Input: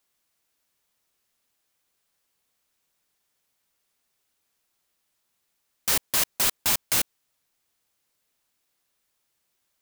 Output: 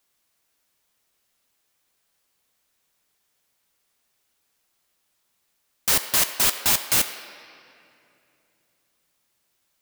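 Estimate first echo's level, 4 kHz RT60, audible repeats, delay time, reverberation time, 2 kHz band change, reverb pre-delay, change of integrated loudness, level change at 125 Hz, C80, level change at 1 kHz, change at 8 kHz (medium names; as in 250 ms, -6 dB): no echo, 1.9 s, no echo, no echo, 2.7 s, +3.5 dB, 12 ms, +3.5 dB, +3.0 dB, 10.5 dB, +3.5 dB, +3.5 dB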